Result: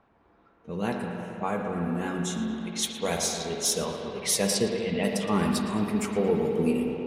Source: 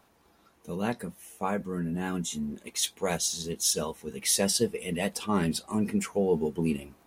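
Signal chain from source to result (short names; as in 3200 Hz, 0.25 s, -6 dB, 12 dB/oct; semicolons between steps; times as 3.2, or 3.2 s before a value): spring tank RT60 3.5 s, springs 45/57 ms, chirp 25 ms, DRR 2.5 dB; low-pass opened by the level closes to 1900 Hz, open at -23.5 dBFS; 4.54–5.03 LPF 10000 Hz -> 3900 Hz 24 dB/oct; tape echo 0.114 s, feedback 77%, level -10 dB, low-pass 3400 Hz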